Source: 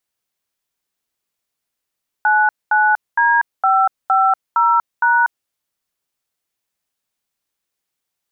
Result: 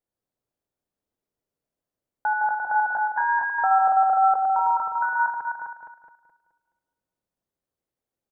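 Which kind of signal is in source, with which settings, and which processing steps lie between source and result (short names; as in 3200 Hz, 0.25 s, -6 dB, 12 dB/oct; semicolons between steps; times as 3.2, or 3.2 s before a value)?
DTMF "99D550#", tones 0.24 s, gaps 0.222 s, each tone -13.5 dBFS
regenerating reverse delay 0.106 s, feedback 60%, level -5 dB; EQ curve 560 Hz 0 dB, 1000 Hz -9 dB, 1700 Hz -13 dB, 2500 Hz -17 dB; on a send: echo 0.255 s -4.5 dB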